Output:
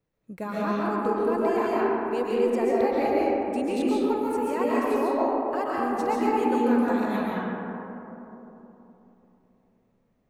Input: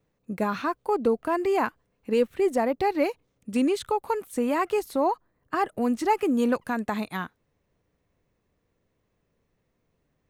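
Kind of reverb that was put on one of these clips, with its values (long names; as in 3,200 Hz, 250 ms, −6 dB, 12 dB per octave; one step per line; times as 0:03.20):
comb and all-pass reverb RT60 3.5 s, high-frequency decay 0.3×, pre-delay 95 ms, DRR −7 dB
level −7.5 dB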